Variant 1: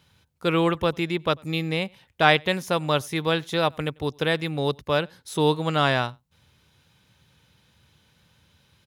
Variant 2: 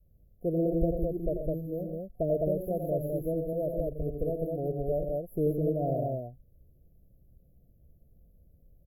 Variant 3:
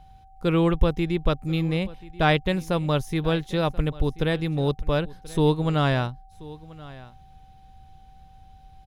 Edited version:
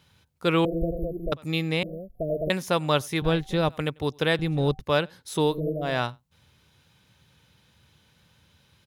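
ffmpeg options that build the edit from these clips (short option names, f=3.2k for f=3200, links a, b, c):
-filter_complex "[1:a]asplit=3[a][b][c];[2:a]asplit=2[d][e];[0:a]asplit=6[f][g][h][i][j][k];[f]atrim=end=0.652[l];[a]atrim=start=0.648:end=1.322[m];[g]atrim=start=1.318:end=1.832[n];[b]atrim=start=1.828:end=2.502[o];[h]atrim=start=2.498:end=3.222[p];[d]atrim=start=3.218:end=3.692[q];[i]atrim=start=3.688:end=4.392[r];[e]atrim=start=4.388:end=4.802[s];[j]atrim=start=4.798:end=5.61[t];[c]atrim=start=5.37:end=6.05[u];[k]atrim=start=5.81[v];[l][m]acrossfade=d=0.004:c1=hsin:c2=hsin[w];[w][n]acrossfade=d=0.004:c1=hsin:c2=hsin[x];[x][o]acrossfade=d=0.004:c1=hsin:c2=hsin[y];[y][p]acrossfade=d=0.004:c1=hsin:c2=hsin[z];[z][q]acrossfade=d=0.004:c1=hsin:c2=hsin[aa];[aa][r]acrossfade=d=0.004:c1=hsin:c2=hsin[ab];[ab][s]acrossfade=d=0.004:c1=hsin:c2=hsin[ac];[ac][t]acrossfade=d=0.004:c1=hsin:c2=hsin[ad];[ad][u]acrossfade=d=0.24:c1=tri:c2=tri[ae];[ae][v]acrossfade=d=0.24:c1=tri:c2=tri"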